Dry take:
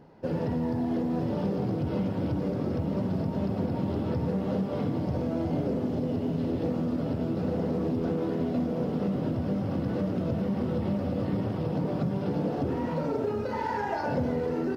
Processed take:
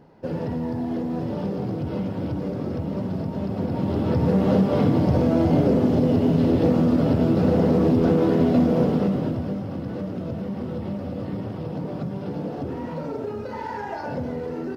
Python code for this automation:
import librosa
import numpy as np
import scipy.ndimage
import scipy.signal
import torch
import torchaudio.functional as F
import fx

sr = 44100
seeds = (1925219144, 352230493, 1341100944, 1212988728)

y = fx.gain(x, sr, db=fx.line((3.45, 1.5), (4.43, 10.0), (8.8, 10.0), (9.68, -1.0)))